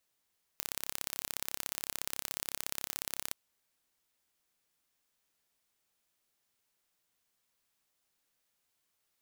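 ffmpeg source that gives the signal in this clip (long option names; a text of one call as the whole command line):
ffmpeg -f lavfi -i "aevalsrc='0.447*eq(mod(n,1301),0)*(0.5+0.5*eq(mod(n,2602),0))':duration=2.72:sample_rate=44100" out.wav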